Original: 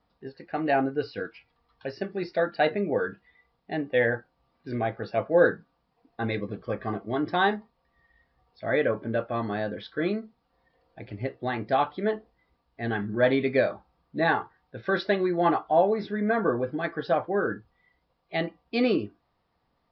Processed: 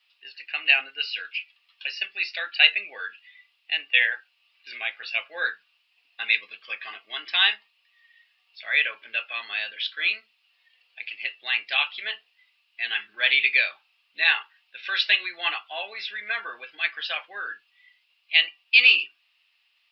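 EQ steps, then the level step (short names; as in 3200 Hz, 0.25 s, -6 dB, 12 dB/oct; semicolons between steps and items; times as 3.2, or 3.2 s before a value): resonant high-pass 2700 Hz, resonance Q 7.7; +8.0 dB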